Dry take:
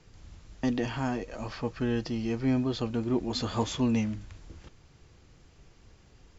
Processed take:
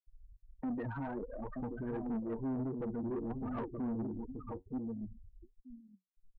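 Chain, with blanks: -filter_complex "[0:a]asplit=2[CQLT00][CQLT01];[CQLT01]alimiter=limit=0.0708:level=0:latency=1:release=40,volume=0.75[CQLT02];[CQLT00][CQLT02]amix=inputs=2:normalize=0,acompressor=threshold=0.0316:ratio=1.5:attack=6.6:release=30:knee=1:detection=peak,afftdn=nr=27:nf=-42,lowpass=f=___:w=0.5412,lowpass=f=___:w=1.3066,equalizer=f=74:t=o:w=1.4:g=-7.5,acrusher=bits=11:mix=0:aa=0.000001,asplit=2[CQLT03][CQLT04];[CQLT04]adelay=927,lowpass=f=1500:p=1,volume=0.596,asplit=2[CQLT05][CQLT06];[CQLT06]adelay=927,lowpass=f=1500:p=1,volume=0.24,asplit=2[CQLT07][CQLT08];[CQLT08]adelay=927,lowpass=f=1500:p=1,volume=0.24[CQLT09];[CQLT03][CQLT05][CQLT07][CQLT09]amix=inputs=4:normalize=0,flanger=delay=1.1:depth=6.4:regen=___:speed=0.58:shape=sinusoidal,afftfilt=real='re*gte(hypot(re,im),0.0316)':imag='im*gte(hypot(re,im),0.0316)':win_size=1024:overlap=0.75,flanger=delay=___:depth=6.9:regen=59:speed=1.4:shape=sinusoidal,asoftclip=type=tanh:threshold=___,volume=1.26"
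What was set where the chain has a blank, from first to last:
2000, 2000, 52, 3.9, 0.0188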